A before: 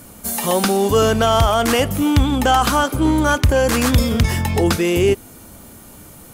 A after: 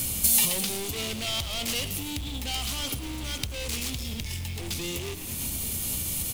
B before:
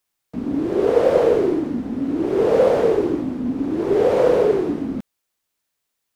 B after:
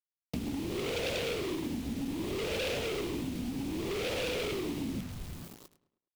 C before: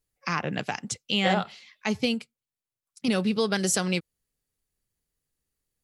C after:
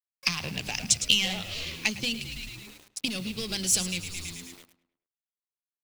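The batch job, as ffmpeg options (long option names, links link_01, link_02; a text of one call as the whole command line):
ffmpeg -i in.wav -filter_complex "[0:a]asoftclip=type=hard:threshold=-20.5dB,equalizer=frequency=66:width_type=o:width=1.1:gain=6.5,bandreject=frequency=50:width_type=h:width=6,bandreject=frequency=100:width_type=h:width=6,bandreject=frequency=150:width_type=h:width=6,bandreject=frequency=200:width_type=h:width=6,bandreject=frequency=250:width_type=h:width=6,bandreject=frequency=300:width_type=h:width=6,alimiter=limit=-19.5dB:level=0:latency=1:release=39,bass=frequency=250:gain=8,treble=frequency=4000:gain=-8,asplit=2[link_01][link_02];[link_02]asplit=7[link_03][link_04][link_05][link_06][link_07][link_08][link_09];[link_03]adelay=109,afreqshift=-88,volume=-13dB[link_10];[link_04]adelay=218,afreqshift=-176,volume=-17.2dB[link_11];[link_05]adelay=327,afreqshift=-264,volume=-21.3dB[link_12];[link_06]adelay=436,afreqshift=-352,volume=-25.5dB[link_13];[link_07]adelay=545,afreqshift=-440,volume=-29.6dB[link_14];[link_08]adelay=654,afreqshift=-528,volume=-33.8dB[link_15];[link_09]adelay=763,afreqshift=-616,volume=-37.9dB[link_16];[link_10][link_11][link_12][link_13][link_14][link_15][link_16]amix=inputs=7:normalize=0[link_17];[link_01][link_17]amix=inputs=2:normalize=0,acompressor=threshold=-33dB:ratio=10,aexciter=amount=8.9:drive=5.6:freq=2300,acrusher=bits=7:mix=0:aa=0.000001,asplit=2[link_18][link_19];[link_19]adelay=105,lowpass=frequency=3400:poles=1,volume=-17dB,asplit=2[link_20][link_21];[link_21]adelay=105,lowpass=frequency=3400:poles=1,volume=0.44,asplit=2[link_22][link_23];[link_23]adelay=105,lowpass=frequency=3400:poles=1,volume=0.44,asplit=2[link_24][link_25];[link_25]adelay=105,lowpass=frequency=3400:poles=1,volume=0.44[link_26];[link_20][link_22][link_24][link_26]amix=inputs=4:normalize=0[link_27];[link_18][link_27]amix=inputs=2:normalize=0" out.wav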